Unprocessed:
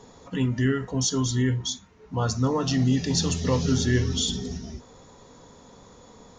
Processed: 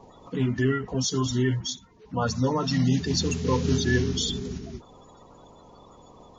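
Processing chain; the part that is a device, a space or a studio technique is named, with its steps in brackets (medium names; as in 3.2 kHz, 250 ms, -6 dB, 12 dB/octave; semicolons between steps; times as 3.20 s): clip after many re-uploads (low-pass 6.5 kHz 24 dB/octave; coarse spectral quantiser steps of 30 dB)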